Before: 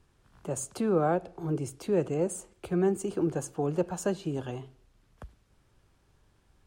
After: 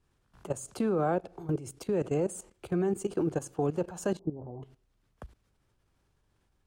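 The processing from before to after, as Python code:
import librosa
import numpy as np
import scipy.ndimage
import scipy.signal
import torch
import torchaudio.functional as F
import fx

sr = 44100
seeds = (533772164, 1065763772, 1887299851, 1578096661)

y = fx.steep_lowpass(x, sr, hz=960.0, slope=48, at=(4.19, 4.63))
y = fx.level_steps(y, sr, step_db=15)
y = y * librosa.db_to_amplitude(3.0)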